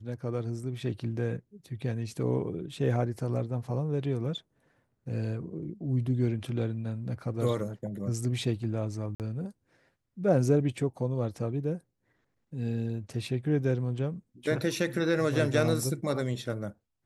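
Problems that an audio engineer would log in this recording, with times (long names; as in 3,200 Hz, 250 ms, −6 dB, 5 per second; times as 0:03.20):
0:09.15–0:09.20: drop-out 48 ms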